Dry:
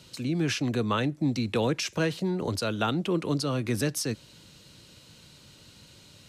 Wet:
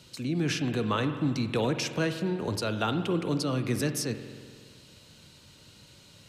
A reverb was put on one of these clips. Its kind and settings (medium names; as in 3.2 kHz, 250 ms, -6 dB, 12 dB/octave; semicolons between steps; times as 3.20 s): spring tank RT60 1.9 s, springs 46 ms, chirp 70 ms, DRR 8 dB; trim -1.5 dB